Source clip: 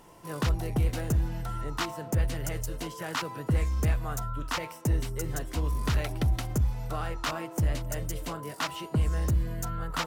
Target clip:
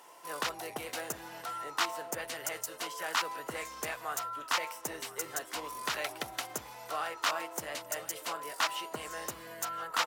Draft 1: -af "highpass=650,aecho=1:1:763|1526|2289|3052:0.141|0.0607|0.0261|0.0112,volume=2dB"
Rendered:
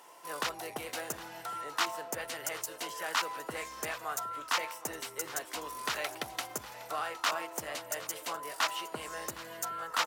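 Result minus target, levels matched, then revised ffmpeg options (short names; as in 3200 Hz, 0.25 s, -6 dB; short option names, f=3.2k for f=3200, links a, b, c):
echo 0.254 s early
-af "highpass=650,aecho=1:1:1017|2034|3051|4068:0.141|0.0607|0.0261|0.0112,volume=2dB"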